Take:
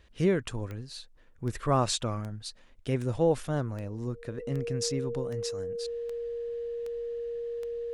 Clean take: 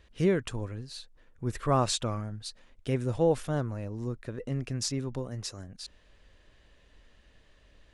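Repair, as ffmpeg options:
ffmpeg -i in.wav -af "adeclick=threshold=4,bandreject=frequency=470:width=30" out.wav

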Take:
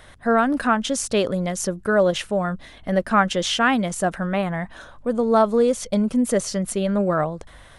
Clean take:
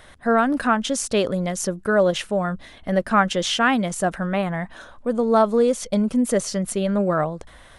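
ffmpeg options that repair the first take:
ffmpeg -i in.wav -af "bandreject=frequency=48.2:width_type=h:width=4,bandreject=frequency=96.4:width_type=h:width=4,bandreject=frequency=144.6:width_type=h:width=4" out.wav

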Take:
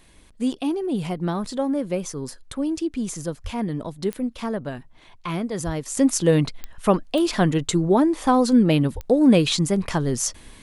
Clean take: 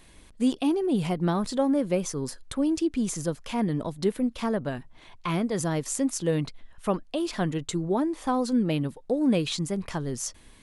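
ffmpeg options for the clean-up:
ffmpeg -i in.wav -filter_complex "[0:a]adeclick=threshold=4,asplit=3[link_01][link_02][link_03];[link_01]afade=type=out:start_time=3.43:duration=0.02[link_04];[link_02]highpass=frequency=140:width=0.5412,highpass=frequency=140:width=1.3066,afade=type=in:start_time=3.43:duration=0.02,afade=type=out:start_time=3.55:duration=0.02[link_05];[link_03]afade=type=in:start_time=3.55:duration=0.02[link_06];[link_04][link_05][link_06]amix=inputs=3:normalize=0,asplit=3[link_07][link_08][link_09];[link_07]afade=type=out:start_time=5.65:duration=0.02[link_10];[link_08]highpass=frequency=140:width=0.5412,highpass=frequency=140:width=1.3066,afade=type=in:start_time=5.65:duration=0.02,afade=type=out:start_time=5.77:duration=0.02[link_11];[link_09]afade=type=in:start_time=5.77:duration=0.02[link_12];[link_10][link_11][link_12]amix=inputs=3:normalize=0,asplit=3[link_13][link_14][link_15];[link_13]afade=type=out:start_time=8.94:duration=0.02[link_16];[link_14]highpass=frequency=140:width=0.5412,highpass=frequency=140:width=1.3066,afade=type=in:start_time=8.94:duration=0.02,afade=type=out:start_time=9.06:duration=0.02[link_17];[link_15]afade=type=in:start_time=9.06:duration=0.02[link_18];[link_16][link_17][link_18]amix=inputs=3:normalize=0,asetnsamples=nb_out_samples=441:pad=0,asendcmd='5.97 volume volume -8dB',volume=0dB" out.wav

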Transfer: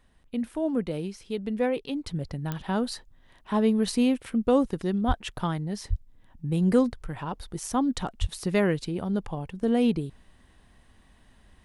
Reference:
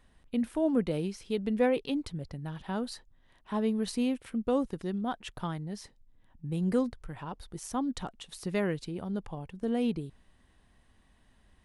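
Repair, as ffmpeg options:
ffmpeg -i in.wav -filter_complex "[0:a]adeclick=threshold=4,asplit=3[link_01][link_02][link_03];[link_01]afade=type=out:start_time=5.07:duration=0.02[link_04];[link_02]highpass=frequency=140:width=0.5412,highpass=frequency=140:width=1.3066,afade=type=in:start_time=5.07:duration=0.02,afade=type=out:start_time=5.19:duration=0.02[link_05];[link_03]afade=type=in:start_time=5.19:duration=0.02[link_06];[link_04][link_05][link_06]amix=inputs=3:normalize=0,asplit=3[link_07][link_08][link_09];[link_07]afade=type=out:start_time=5.89:duration=0.02[link_10];[link_08]highpass=frequency=140:width=0.5412,highpass=frequency=140:width=1.3066,afade=type=in:start_time=5.89:duration=0.02,afade=type=out:start_time=6.01:duration=0.02[link_11];[link_09]afade=type=in:start_time=6.01:duration=0.02[link_12];[link_10][link_11][link_12]amix=inputs=3:normalize=0,asplit=3[link_13][link_14][link_15];[link_13]afade=type=out:start_time=8.2:duration=0.02[link_16];[link_14]highpass=frequency=140:width=0.5412,highpass=frequency=140:width=1.3066,afade=type=in:start_time=8.2:duration=0.02,afade=type=out:start_time=8.32:duration=0.02[link_17];[link_15]afade=type=in:start_time=8.32:duration=0.02[link_18];[link_16][link_17][link_18]amix=inputs=3:normalize=0,asetnsamples=nb_out_samples=441:pad=0,asendcmd='2.07 volume volume -6.5dB',volume=0dB" out.wav

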